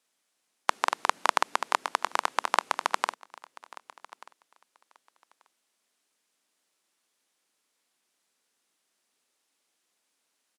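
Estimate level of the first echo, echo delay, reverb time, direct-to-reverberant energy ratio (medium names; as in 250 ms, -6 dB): -21.0 dB, 1186 ms, no reverb, no reverb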